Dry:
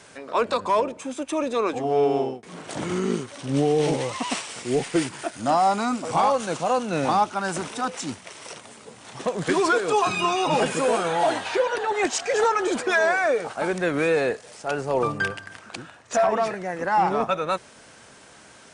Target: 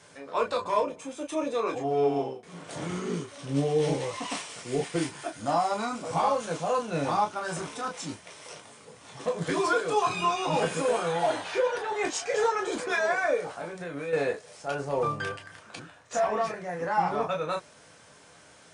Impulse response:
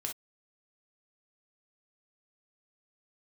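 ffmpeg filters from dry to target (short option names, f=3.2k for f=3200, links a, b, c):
-filter_complex "[0:a]asettb=1/sr,asplit=3[a][b][c];[a]atrim=end=13.504[d];[b]atrim=start=13.5:end=14.13,asetpts=PTS-STARTPTS,afade=t=in:d=0.004:c=qsin,afade=t=out:st=0.626:d=0.004:c=qsin,acompressor=threshold=-28dB:ratio=10[e];[c]atrim=start=14.126[f];[d][e]acrossfade=d=0.004:c1=hsin:c2=qsin[g];[g][f]acrossfade=d=0.004:c1=qsin:c2=hsin[h];[1:a]atrim=start_sample=2205,asetrate=70560,aresample=44100[i];[h][i]afir=irnorm=-1:irlink=0,volume=-1.5dB"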